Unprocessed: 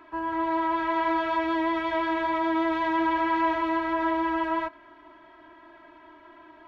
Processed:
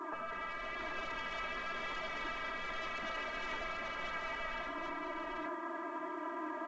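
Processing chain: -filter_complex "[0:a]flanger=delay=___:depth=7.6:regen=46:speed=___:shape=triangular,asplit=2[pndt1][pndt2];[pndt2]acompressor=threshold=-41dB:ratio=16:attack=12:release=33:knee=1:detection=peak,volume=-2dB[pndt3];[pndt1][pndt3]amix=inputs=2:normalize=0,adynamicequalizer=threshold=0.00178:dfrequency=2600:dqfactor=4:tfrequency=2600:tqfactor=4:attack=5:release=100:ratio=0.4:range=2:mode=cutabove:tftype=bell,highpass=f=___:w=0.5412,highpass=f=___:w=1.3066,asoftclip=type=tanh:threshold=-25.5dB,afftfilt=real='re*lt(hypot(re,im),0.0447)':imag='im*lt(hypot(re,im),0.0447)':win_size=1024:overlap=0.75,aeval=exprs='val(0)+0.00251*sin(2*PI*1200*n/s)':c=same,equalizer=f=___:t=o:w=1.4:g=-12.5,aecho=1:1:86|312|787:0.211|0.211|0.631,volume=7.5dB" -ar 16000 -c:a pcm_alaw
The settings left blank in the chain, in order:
4.8, 0.98, 190, 190, 3900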